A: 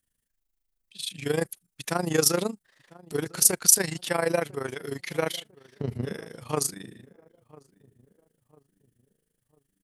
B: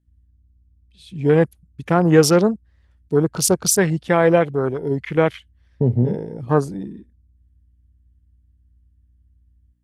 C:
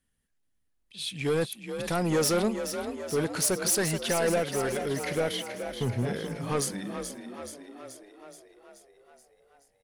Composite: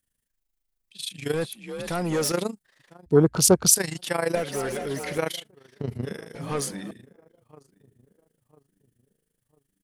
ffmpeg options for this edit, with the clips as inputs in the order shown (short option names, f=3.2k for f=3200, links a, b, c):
-filter_complex "[2:a]asplit=3[a][b][c];[0:a]asplit=5[d][e][f][g][h];[d]atrim=end=1.342[i];[a]atrim=start=1.338:end=2.322[j];[e]atrim=start=2.318:end=3.062[k];[1:a]atrim=start=3.058:end=3.732[l];[f]atrim=start=3.728:end=4.352[m];[b]atrim=start=4.348:end=5.182[n];[g]atrim=start=5.178:end=6.352[o];[c]atrim=start=6.348:end=6.912[p];[h]atrim=start=6.908[q];[i][j]acrossfade=d=0.004:c1=hsin:c2=hsin[r];[r][k]acrossfade=d=0.004:c1=hsin:c2=hsin[s];[s][l]acrossfade=d=0.004:c1=hsin:c2=hsin[t];[t][m]acrossfade=d=0.004:c1=hsin:c2=hsin[u];[u][n]acrossfade=d=0.004:c1=hsin:c2=hsin[v];[v][o]acrossfade=d=0.004:c1=hsin:c2=hsin[w];[w][p]acrossfade=d=0.004:c1=hsin:c2=hsin[x];[x][q]acrossfade=d=0.004:c1=hsin:c2=hsin"